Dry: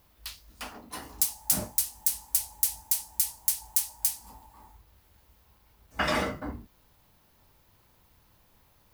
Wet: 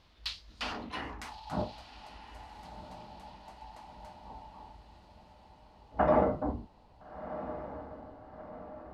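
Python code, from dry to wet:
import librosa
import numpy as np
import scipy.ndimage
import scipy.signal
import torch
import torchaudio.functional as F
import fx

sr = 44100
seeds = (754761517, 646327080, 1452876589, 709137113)

y = fx.rider(x, sr, range_db=10, speed_s=2.0)
y = fx.filter_sweep_lowpass(y, sr, from_hz=4100.0, to_hz=760.0, start_s=0.75, end_s=1.69, q=1.9)
y = fx.echo_diffused(y, sr, ms=1377, feedback_pct=53, wet_db=-12.0)
y = fx.sustainer(y, sr, db_per_s=38.0, at=(0.62, 1.62))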